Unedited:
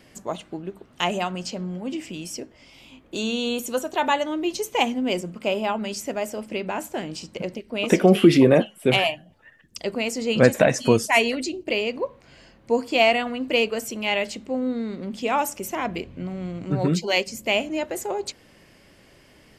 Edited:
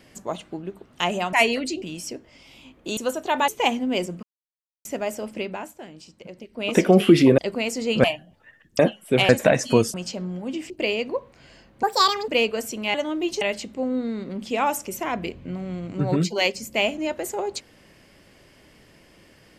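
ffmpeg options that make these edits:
-filter_complex "[0:a]asplit=19[a][b][c][d][e][f][g][h][i][j][k][l][m][n][o][p][q][r][s];[a]atrim=end=1.332[t];[b]atrim=start=11.088:end=11.582[u];[c]atrim=start=2.088:end=3.242[v];[d]atrim=start=3.648:end=4.162[w];[e]atrim=start=4.628:end=5.38,asetpts=PTS-STARTPTS,afade=t=out:st=0.748:d=0.004:c=hsin[x];[f]atrim=start=5.38:end=6,asetpts=PTS-STARTPTS,volume=0[y];[g]atrim=start=6:end=6.89,asetpts=PTS-STARTPTS,afade=t=in:d=0.004:c=hsin,afade=t=out:st=0.52:d=0.37:silence=0.281838[z];[h]atrim=start=6.89:end=7.49,asetpts=PTS-STARTPTS,volume=-11dB[aa];[i]atrim=start=7.49:end=8.532,asetpts=PTS-STARTPTS,afade=t=in:d=0.37:silence=0.281838[ab];[j]atrim=start=9.778:end=10.442[ac];[k]atrim=start=9.028:end=9.782[ad];[l]atrim=start=8.528:end=9.032[ae];[m]atrim=start=10.438:end=11.092[af];[n]atrim=start=1.328:end=2.092[ag];[o]atrim=start=11.578:end=12.714[ah];[p]atrim=start=12.71:end=13.47,asetpts=PTS-STARTPTS,asetrate=74088,aresample=44100[ai];[q]atrim=start=13.466:end=14.132[aj];[r]atrim=start=4.158:end=4.632[ak];[s]atrim=start=14.128[al];[t][u]acrossfade=d=0.004:c1=hsin:c2=hsin[am];[am][v]acrossfade=d=0.004:c1=hsin:c2=hsin[an];[an][w]acrossfade=d=0.004:c1=hsin:c2=hsin[ao];[x][y][z][aa][ab]concat=n=5:v=0:a=1[ap];[ao][ap]acrossfade=d=0.004:c1=hsin:c2=hsin[aq];[aq][ac]acrossfade=d=0.004:c1=hsin:c2=hsin[ar];[ar][ad]acrossfade=d=0.004:c1=hsin:c2=hsin[as];[as][ae]acrossfade=d=0.004:c1=hsin:c2=hsin[at];[at][af]acrossfade=d=0.004:c1=hsin:c2=hsin[au];[au][ag]acrossfade=d=0.004:c1=hsin:c2=hsin[av];[av][ah]acrossfade=d=0.004:c1=hsin:c2=hsin[aw];[aw][ai]acrossfade=d=0.004:c1=hsin:c2=hsin[ax];[ax][aj]acrossfade=d=0.004:c1=hsin:c2=hsin[ay];[ay][ak]acrossfade=d=0.004:c1=hsin:c2=hsin[az];[az][al]acrossfade=d=0.004:c1=hsin:c2=hsin"

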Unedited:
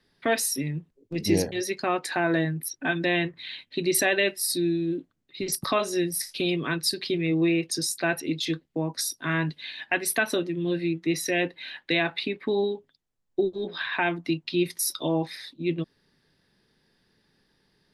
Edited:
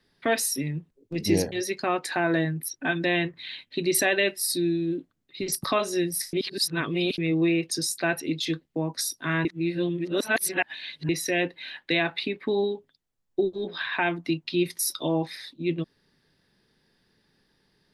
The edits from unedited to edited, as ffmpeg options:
-filter_complex "[0:a]asplit=5[a][b][c][d][e];[a]atrim=end=6.332[f];[b]atrim=start=6.328:end=7.182,asetpts=PTS-STARTPTS,areverse[g];[c]atrim=start=7.178:end=9.452[h];[d]atrim=start=9.448:end=11.092,asetpts=PTS-STARTPTS,areverse[i];[e]atrim=start=11.088[j];[f][g]acrossfade=d=0.004:c1=hsin:c2=hsin[k];[k][h]acrossfade=d=0.004:c1=hsin:c2=hsin[l];[l][i]acrossfade=d=0.004:c1=hsin:c2=hsin[m];[m][j]acrossfade=d=0.004:c1=hsin:c2=hsin"

